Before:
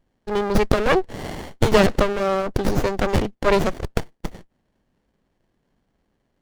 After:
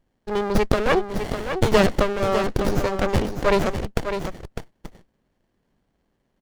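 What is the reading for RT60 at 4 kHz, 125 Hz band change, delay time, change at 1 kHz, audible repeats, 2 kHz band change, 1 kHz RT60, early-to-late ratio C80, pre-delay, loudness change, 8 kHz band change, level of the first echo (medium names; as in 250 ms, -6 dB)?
no reverb, -1.0 dB, 603 ms, -1.0 dB, 1, -1.0 dB, no reverb, no reverb, no reverb, -1.5 dB, -1.0 dB, -8.0 dB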